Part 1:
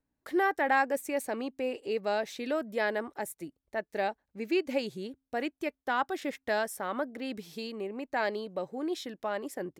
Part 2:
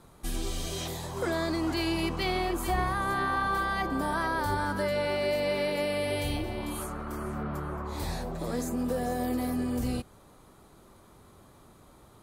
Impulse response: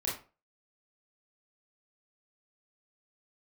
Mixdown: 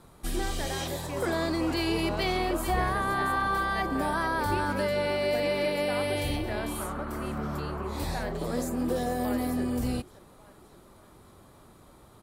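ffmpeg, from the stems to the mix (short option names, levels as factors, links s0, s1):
-filter_complex "[0:a]alimiter=limit=0.075:level=0:latency=1,volume=0.422,asplit=3[s0][s1][s2];[s1]volume=0.266[s3];[s2]volume=0.211[s4];[1:a]bandreject=f=6400:w=21,volume=1.12[s5];[2:a]atrim=start_sample=2205[s6];[s3][s6]afir=irnorm=-1:irlink=0[s7];[s4]aecho=0:1:573|1146|1719|2292|2865|3438|4011|4584:1|0.56|0.314|0.176|0.0983|0.0551|0.0308|0.0173[s8];[s0][s5][s7][s8]amix=inputs=4:normalize=0"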